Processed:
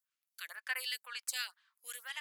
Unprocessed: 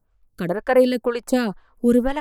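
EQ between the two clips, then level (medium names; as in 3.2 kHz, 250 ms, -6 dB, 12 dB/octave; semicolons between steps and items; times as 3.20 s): Bessel high-pass 2.6 kHz, order 4; -1.5 dB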